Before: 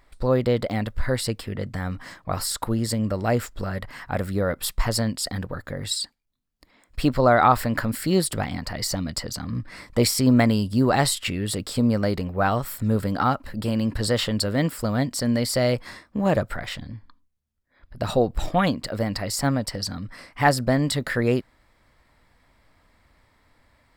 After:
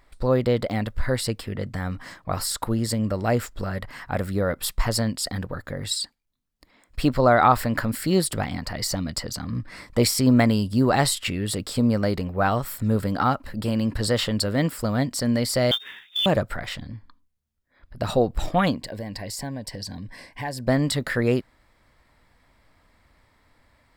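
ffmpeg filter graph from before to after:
-filter_complex "[0:a]asettb=1/sr,asplit=3[a][b][c];[a]atrim=end=15.714[d];[b]atrim=start=15.71:end=16.26,asetpts=PTS-STARTPTS,afade=t=in:d=0.004:c=qsin,afade=t=out:st=0.546:d=0.004:c=qsin,lowpass=f=3.1k:t=q:w=0.5098,lowpass=f=3.1k:t=q:w=0.6013,lowpass=f=3.1k:t=q:w=0.9,lowpass=f=3.1k:t=q:w=2.563,afreqshift=-3700,acrusher=bits=5:mode=log:mix=0:aa=0.000001,acompressor=mode=upward:threshold=-41dB:ratio=2.5:attack=3.2:release=140:knee=2.83:detection=peak[e];[c]atrim=start=16.256[f];[d][e]acrossfade=d=0.004:c1=hsin:c2=qsin[g];[g][f]acrossfade=d=0.004:c1=qsin:c2=hsin,asettb=1/sr,asplit=3[h][i][j];[h]atrim=end=18.764[k];[i]atrim=start=18.76:end=20.68,asetpts=PTS-STARTPTS,afade=t=in:d=0.004:c=qsin,afade=t=out:st=1.916:d=0.004:c=qsin,asuperstop=centerf=1300:order=8:qfactor=3.6,acompressor=threshold=-32dB:ratio=2.5:attack=3.2:release=140:knee=1:detection=peak[l];[j]atrim=start=20.676[m];[k][l]acrossfade=d=0.004:c1=hsin:c2=qsin[n];[n][m]acrossfade=d=0.004:c1=qsin:c2=hsin"

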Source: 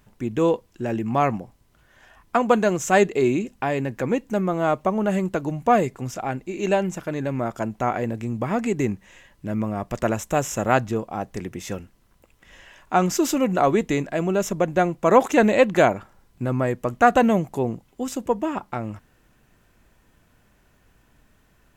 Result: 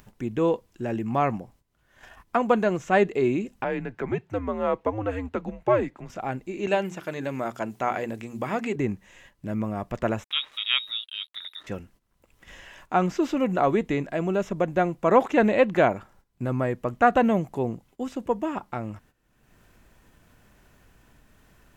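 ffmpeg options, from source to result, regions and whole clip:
-filter_complex "[0:a]asettb=1/sr,asplit=3[a][b][c];[a]atrim=end=3.644[d];[b]atrim=start=3.64:end=6.1,asetpts=PTS-STARTPTS,afade=t=in:d=0.004:c=qsin,afade=t=out:st=2.456:d=0.004:c=qsin,acrossover=split=260 3900:gain=0.126 1 0.141[e][f][g];[e][f][g]amix=inputs=3:normalize=0,afreqshift=-110[h];[c]atrim=start=6.096[i];[d][h]acrossfade=d=0.004:c1=hsin:c2=qsin[j];[j][i]acrossfade=d=0.004:c1=qsin:c2=hsin,asettb=1/sr,asplit=3[k][l][m];[k]atrim=end=6.674[n];[l]atrim=start=6.67:end=8.76,asetpts=PTS-STARTPTS,afade=t=in:d=0.004:c=qsin,afade=t=out:st=2.086:d=0.004:c=qsin,highpass=f=190:p=1,highshelf=f=3.1k:g=11.5,bandreject=f=60:t=h:w=6,bandreject=f=120:t=h:w=6,bandreject=f=180:t=h:w=6,bandreject=f=240:t=h:w=6,bandreject=f=300:t=h:w=6,bandreject=f=360:t=h:w=6,bandreject=f=420:t=h:w=6[o];[m]atrim=start=8.756[p];[n][o]acrossfade=d=0.004:c1=hsin:c2=qsin[q];[q][p]acrossfade=d=0.004:c1=qsin:c2=hsin,asettb=1/sr,asplit=3[r][s][t];[r]atrim=end=10.244[u];[s]atrim=start=10.24:end=11.67,asetpts=PTS-STARTPTS,afade=t=in:d=0.004:c=qsin,afade=t=out:st=1.426:d=0.004:c=qsin,lowpass=f=3.3k:t=q:w=0.5098,lowpass=f=3.3k:t=q:w=0.6013,lowpass=f=3.3k:t=q:w=0.9,lowpass=f=3.3k:t=q:w=2.563,afreqshift=-3900,aeval=exprs='sgn(val(0))*max(abs(val(0))-0.00422,0)':c=same[v];[t]atrim=start=11.666[w];[u][v]acrossfade=d=0.004:c1=hsin:c2=qsin[x];[x][w]acrossfade=d=0.004:c1=qsin:c2=hsin,acrossover=split=3900[y][z];[z]acompressor=threshold=-52dB:ratio=4:attack=1:release=60[aa];[y][aa]amix=inputs=2:normalize=0,agate=range=-15dB:threshold=-51dB:ratio=16:detection=peak,acompressor=mode=upward:threshold=-36dB:ratio=2.5,volume=-3dB"

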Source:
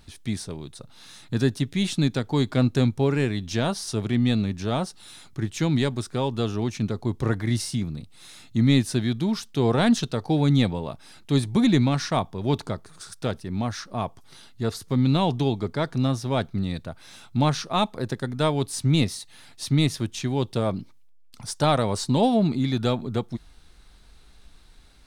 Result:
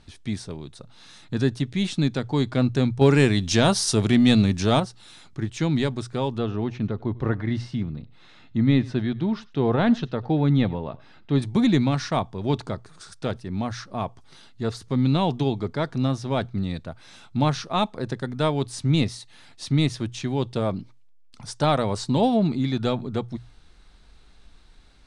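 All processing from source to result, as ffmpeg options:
-filter_complex "[0:a]asettb=1/sr,asplit=3[a][b][c];[a]atrim=end=3.014[d];[b]atrim=start=3.01:end=4.8,asetpts=PTS-STARTPTS,afade=t=in:d=0.004:c=qsin,afade=t=out:st=1.786:d=0.004:c=qsin,acontrast=56,aemphasis=mode=production:type=50kf[e];[c]atrim=start=4.796[f];[d][e]acrossfade=d=0.004:c1=hsin:c2=qsin[g];[g][f]acrossfade=d=0.004:c1=qsin:c2=hsin,asettb=1/sr,asplit=3[h][i][j];[h]atrim=end=6.384[k];[i]atrim=start=6.38:end=11.42,asetpts=PTS-STARTPTS,afade=t=in:d=0.004:c=qsin,afade=t=out:st=5.036:d=0.004:c=qsin,lowpass=2.9k,bandreject=f=2.3k:w=22,aecho=1:1:97:0.075,atrim=end_sample=222264[l];[j]atrim=start=11.416[m];[k][l]acrossfade=d=0.004:c1=hsin:c2=qsin[n];[n][m]acrossfade=d=0.004:c1=qsin:c2=hsin,lowpass=f=9.6k:w=0.5412,lowpass=f=9.6k:w=1.3066,highshelf=f=6.7k:g=-7,bandreject=f=60:t=h:w=6,bandreject=f=120:t=h:w=6"

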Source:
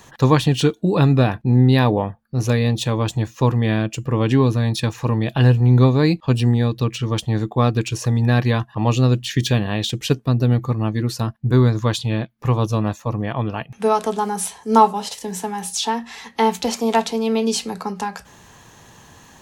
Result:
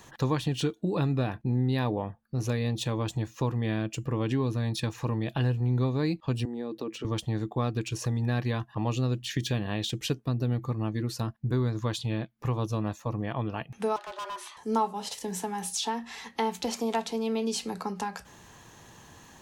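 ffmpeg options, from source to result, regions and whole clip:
-filter_complex "[0:a]asettb=1/sr,asplit=3[a][b][c];[a]atrim=end=6.454[d];[b]atrim=start=6.45:end=7.05,asetpts=PTS-STARTPTS,afade=t=in:d=0.004:c=qsin,afade=t=out:st=0.596:d=0.004:c=qsin,highpass=f=270:w=0.5412,highpass=f=270:w=1.3066,tiltshelf=f=810:g=7.5,acompressor=threshold=-27dB:ratio=2.5:attack=3.2:release=140:knee=1:detection=peak[e];[c]atrim=start=7.046[f];[d][e]acrossfade=d=0.004:c1=hsin:c2=qsin[g];[g][f]acrossfade=d=0.004:c1=qsin:c2=hsin,asettb=1/sr,asplit=3[h][i][j];[h]atrim=end=13.964[k];[i]atrim=start=13.96:end=14.57,asetpts=PTS-STARTPTS,afade=t=in:d=0.004:c=qsin,afade=t=out:st=0.606:d=0.004:c=qsin,acrossover=split=520 4400:gain=0.126 1 0.112[l][m][n];[l][m][n]amix=inputs=3:normalize=0,afreqshift=180,asoftclip=type=hard:threshold=-28.5dB[o];[j]atrim=start=14.566[p];[k][o]acrossfade=d=0.004:c1=hsin:c2=qsin[q];[q][p]acrossfade=d=0.004:c1=qsin:c2=hsin,equalizer=f=330:w=5.6:g=3,acompressor=threshold=-24dB:ratio=2,volume=-5.5dB"

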